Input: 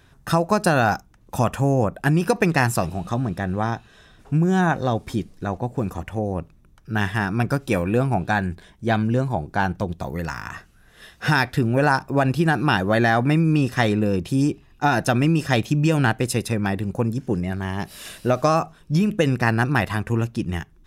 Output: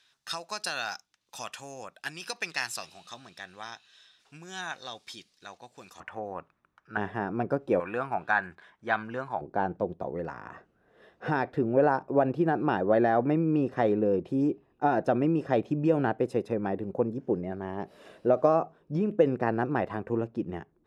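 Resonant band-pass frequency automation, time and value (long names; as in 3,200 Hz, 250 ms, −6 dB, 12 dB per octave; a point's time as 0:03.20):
resonant band-pass, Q 1.4
4,300 Hz
from 0:06.00 1,300 Hz
from 0:06.97 500 Hz
from 0:07.80 1,300 Hz
from 0:09.41 480 Hz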